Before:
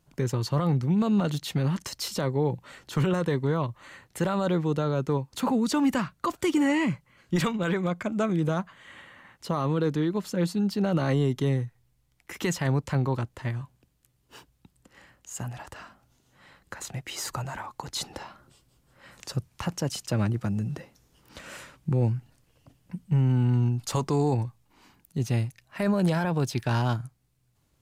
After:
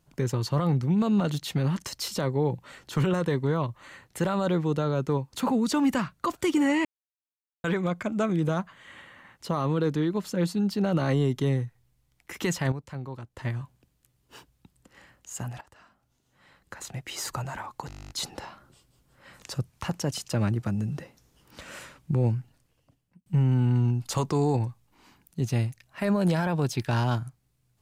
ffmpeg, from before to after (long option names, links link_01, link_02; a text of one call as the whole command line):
ffmpeg -i in.wav -filter_complex "[0:a]asplit=18[link_01][link_02][link_03][link_04][link_05][link_06][link_07][link_08][link_09][link_10][link_11][link_12][link_13][link_14][link_15][link_16][link_17][link_18];[link_01]atrim=end=6.85,asetpts=PTS-STARTPTS,afade=type=out:start_time=6.846:duration=0.004:curve=hsin[link_19];[link_02]atrim=start=6.85:end=7.64,asetpts=PTS-STARTPTS,volume=0[link_20];[link_03]atrim=start=7.64:end=12.722,asetpts=PTS-STARTPTS,afade=type=in:duration=0.004:curve=hsin[link_21];[link_04]atrim=start=12.718:end=13.372,asetpts=PTS-STARTPTS,volume=-11dB[link_22];[link_05]atrim=start=13.368:end=15.61,asetpts=PTS-STARTPTS,afade=type=out:start_time=2.238:duration=0.004:curve=hsin:silence=0.158489[link_23];[link_06]atrim=start=15.61:end=17.902,asetpts=PTS-STARTPTS,afade=type=in:duration=1.6:silence=0.158489[link_24];[link_07]atrim=start=17.878:end=17.902[link_25];[link_08]atrim=start=17.878:end=17.902[link_26];[link_09]atrim=start=17.878:end=17.902[link_27];[link_10]atrim=start=17.878:end=17.902[link_28];[link_11]atrim=start=17.878:end=17.902[link_29];[link_12]atrim=start=17.878:end=17.902[link_30];[link_13]atrim=start=17.878:end=17.902[link_31];[link_14]atrim=start=17.878:end=17.902[link_32];[link_15]atrim=start=17.878:end=17.902[link_33];[link_16]atrim=start=17.878:end=17.902[link_34];[link_17]atrim=start=17.878:end=23.04,asetpts=PTS-STARTPTS,afade=type=out:start_time=4.182:duration=0.98[link_35];[link_18]atrim=start=23.04,asetpts=PTS-STARTPTS,afade=type=in:duration=0.004:curve=hsin[link_36];[link_19][link_20][link_21]concat=n=3:v=0:a=1[link_37];[link_37][link_22]acrossfade=duration=0.004:curve1=hsin:curve2=hsin[link_38];[link_23][link_24]concat=n=2:v=0:a=1[link_39];[link_38][link_39]acrossfade=duration=0.004:curve1=hsin:curve2=hsin[link_40];[link_40][link_25]acrossfade=duration=0.004:curve1=hsin:curve2=hsin[link_41];[link_41][link_26]acrossfade=duration=0.004:curve1=hsin:curve2=hsin[link_42];[link_42][link_27]acrossfade=duration=0.004:curve1=hsin:curve2=hsin[link_43];[link_43][link_28]acrossfade=duration=0.004:curve1=hsin:curve2=hsin[link_44];[link_44][link_29]acrossfade=duration=0.004:curve1=hsin:curve2=hsin[link_45];[link_45][link_30]acrossfade=duration=0.004:curve1=hsin:curve2=hsin[link_46];[link_46][link_31]acrossfade=duration=0.004:curve1=hsin:curve2=hsin[link_47];[link_47][link_32]acrossfade=duration=0.004:curve1=hsin:curve2=hsin[link_48];[link_48][link_33]acrossfade=duration=0.004:curve1=hsin:curve2=hsin[link_49];[link_49][link_34]acrossfade=duration=0.004:curve1=hsin:curve2=hsin[link_50];[link_35][link_36]concat=n=2:v=0:a=1[link_51];[link_50][link_51]acrossfade=duration=0.004:curve1=hsin:curve2=hsin" out.wav